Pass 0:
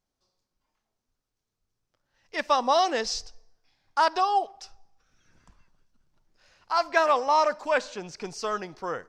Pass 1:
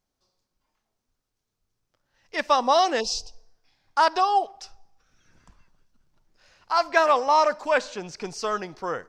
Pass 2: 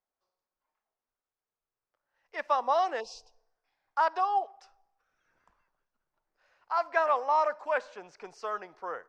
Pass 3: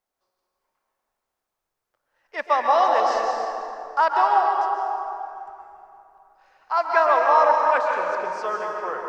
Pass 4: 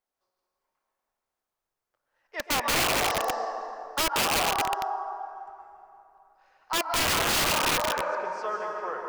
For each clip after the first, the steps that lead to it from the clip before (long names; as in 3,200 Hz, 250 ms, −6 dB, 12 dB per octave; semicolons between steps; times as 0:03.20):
healed spectral selection 0:03.03–0:03.47, 1,100–2,400 Hz after; level +2.5 dB
three-way crossover with the lows and the highs turned down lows −17 dB, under 430 Hz, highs −14 dB, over 2,200 Hz; level −5.5 dB
dense smooth reverb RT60 2.9 s, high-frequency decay 0.55×, pre-delay 115 ms, DRR −0.5 dB; level +6.5 dB
wrap-around overflow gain 15 dB; level −4.5 dB